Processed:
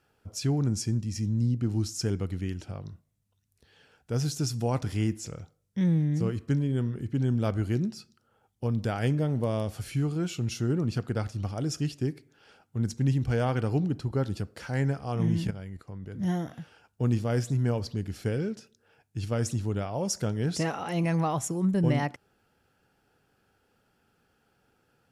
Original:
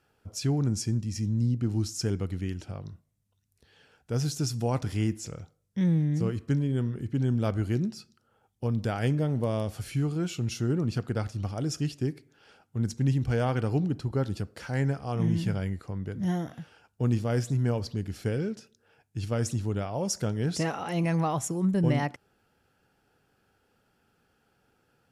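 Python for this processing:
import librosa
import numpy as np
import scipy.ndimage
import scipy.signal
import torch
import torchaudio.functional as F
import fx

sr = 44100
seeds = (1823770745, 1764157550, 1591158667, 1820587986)

y = fx.level_steps(x, sr, step_db=13, at=(15.47, 16.19))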